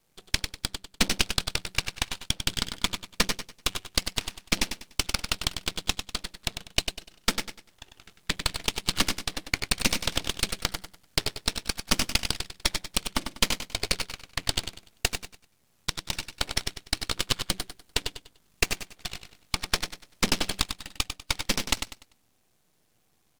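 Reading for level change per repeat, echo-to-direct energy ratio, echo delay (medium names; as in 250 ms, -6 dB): -10.5 dB, -7.5 dB, 98 ms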